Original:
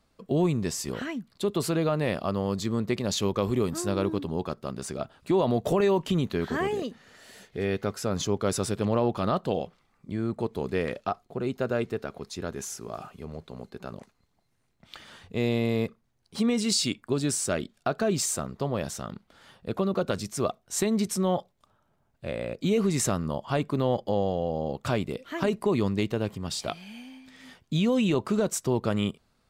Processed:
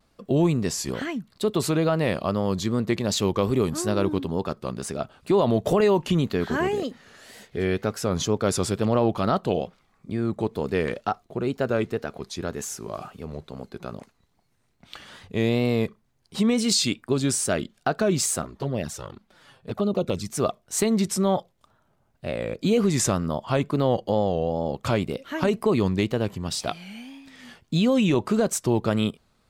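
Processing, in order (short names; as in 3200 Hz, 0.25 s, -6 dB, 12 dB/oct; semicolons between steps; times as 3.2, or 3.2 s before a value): 18.42–20.3 envelope flanger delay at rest 8.3 ms, full sweep at -23 dBFS; wow and flutter 94 cents; gain +3.5 dB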